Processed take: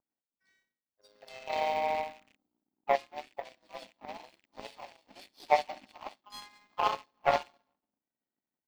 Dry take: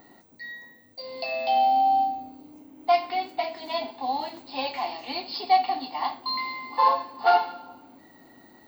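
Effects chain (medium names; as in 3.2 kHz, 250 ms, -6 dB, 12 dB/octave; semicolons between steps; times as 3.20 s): rattle on loud lows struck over -47 dBFS, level -23 dBFS; harmony voices -4 st -3 dB, +3 st -8 dB; bands offset in time lows, highs 60 ms, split 1.7 kHz; power-law waveshaper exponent 2; trim -3 dB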